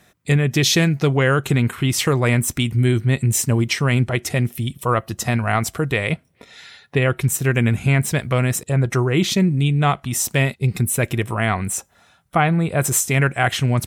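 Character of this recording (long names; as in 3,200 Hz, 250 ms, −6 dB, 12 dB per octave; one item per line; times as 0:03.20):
background noise floor −58 dBFS
spectral slope −5.0 dB per octave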